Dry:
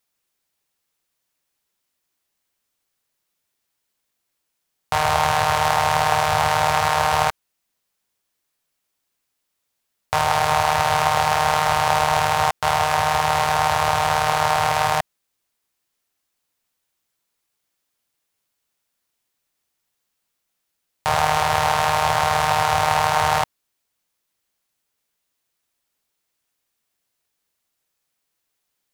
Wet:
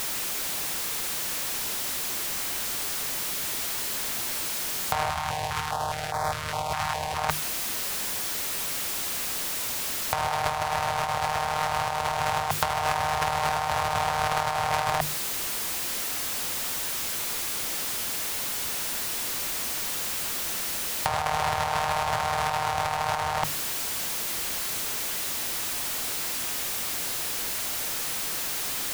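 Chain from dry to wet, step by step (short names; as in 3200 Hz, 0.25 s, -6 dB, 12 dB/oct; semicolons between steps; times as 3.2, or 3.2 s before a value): zero-crossing step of -30 dBFS; notches 50/100/150 Hz; negative-ratio compressor -23 dBFS, ratio -0.5; 5.1–7.18 stepped notch 4.9 Hz 480–2800 Hz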